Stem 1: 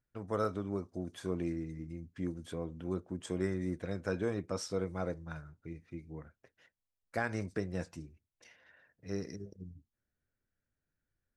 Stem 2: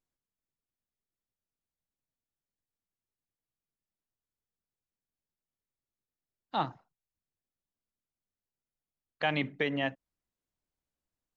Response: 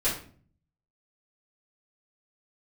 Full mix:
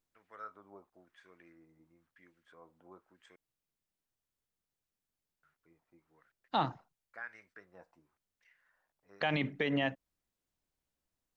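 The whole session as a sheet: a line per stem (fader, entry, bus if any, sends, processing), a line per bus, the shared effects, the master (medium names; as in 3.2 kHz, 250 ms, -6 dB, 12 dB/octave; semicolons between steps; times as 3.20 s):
-5.5 dB, 0.00 s, muted 3.36–5.43 s, no send, bit crusher 11-bit; LFO band-pass sine 0.98 Hz 810–2000 Hz
+2.5 dB, 0.00 s, no send, none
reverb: none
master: peak limiter -20.5 dBFS, peak gain reduction 6.5 dB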